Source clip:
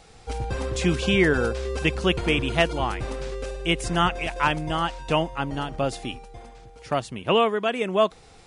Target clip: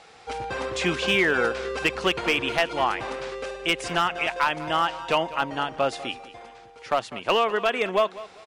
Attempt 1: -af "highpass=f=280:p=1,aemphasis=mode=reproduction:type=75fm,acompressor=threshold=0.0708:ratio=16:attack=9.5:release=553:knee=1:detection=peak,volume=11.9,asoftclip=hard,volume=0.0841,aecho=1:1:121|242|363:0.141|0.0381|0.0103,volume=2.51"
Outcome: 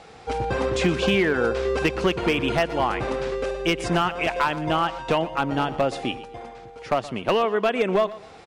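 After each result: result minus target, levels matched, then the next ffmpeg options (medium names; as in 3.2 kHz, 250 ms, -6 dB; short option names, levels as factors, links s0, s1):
echo 78 ms early; 250 Hz band +5.0 dB
-af "highpass=f=280:p=1,aemphasis=mode=reproduction:type=75fm,acompressor=threshold=0.0708:ratio=16:attack=9.5:release=553:knee=1:detection=peak,volume=11.9,asoftclip=hard,volume=0.0841,aecho=1:1:199|398|597:0.141|0.0381|0.0103,volume=2.51"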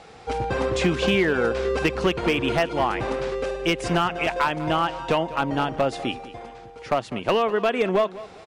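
250 Hz band +5.0 dB
-af "highpass=f=1100:p=1,aemphasis=mode=reproduction:type=75fm,acompressor=threshold=0.0708:ratio=16:attack=9.5:release=553:knee=1:detection=peak,volume=11.9,asoftclip=hard,volume=0.0841,aecho=1:1:199|398|597:0.141|0.0381|0.0103,volume=2.51"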